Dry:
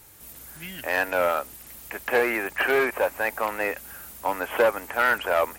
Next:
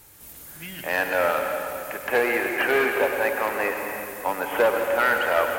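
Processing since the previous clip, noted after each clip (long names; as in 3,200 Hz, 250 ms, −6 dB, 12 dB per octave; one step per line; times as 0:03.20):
convolution reverb RT60 2.7 s, pre-delay 96 ms, DRR 3 dB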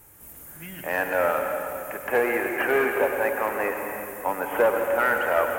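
parametric band 4,200 Hz −13.5 dB 1.1 octaves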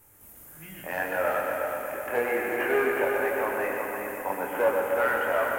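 chorus effect 0.73 Hz, delay 19.5 ms, depth 5.8 ms
on a send: echo machine with several playback heads 122 ms, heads first and third, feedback 59%, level −7 dB
on the sum: level −2 dB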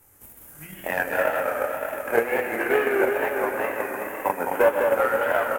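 transient designer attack +11 dB, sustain −3 dB
single-tap delay 210 ms −5 dB
tape wow and flutter 74 cents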